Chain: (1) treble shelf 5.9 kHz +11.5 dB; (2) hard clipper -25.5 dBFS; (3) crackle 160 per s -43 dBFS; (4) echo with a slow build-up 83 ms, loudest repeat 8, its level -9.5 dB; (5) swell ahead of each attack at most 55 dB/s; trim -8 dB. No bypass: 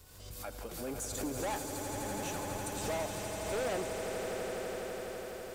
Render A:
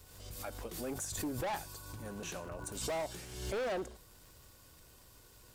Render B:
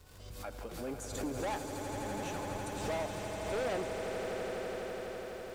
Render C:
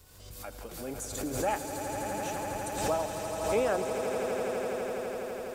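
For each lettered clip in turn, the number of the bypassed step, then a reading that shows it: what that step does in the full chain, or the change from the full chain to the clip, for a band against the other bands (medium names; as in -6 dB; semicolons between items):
4, momentary loudness spread change +14 LU; 1, 8 kHz band -6.5 dB; 2, distortion -6 dB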